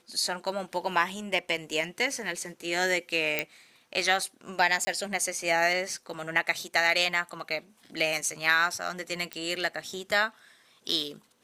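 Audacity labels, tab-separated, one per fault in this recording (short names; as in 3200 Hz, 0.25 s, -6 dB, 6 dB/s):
3.390000	3.390000	pop -10 dBFS
4.850000	4.870000	gap 20 ms
9.330000	9.330000	pop -17 dBFS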